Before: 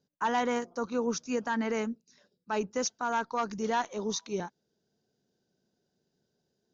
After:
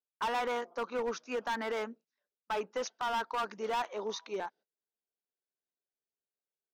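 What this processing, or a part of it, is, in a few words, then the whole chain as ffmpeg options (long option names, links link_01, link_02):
walkie-talkie: -af "highpass=520,lowpass=2800,asoftclip=type=hard:threshold=-32.5dB,agate=range=-23dB:threshold=-60dB:ratio=16:detection=peak,volume=3dB"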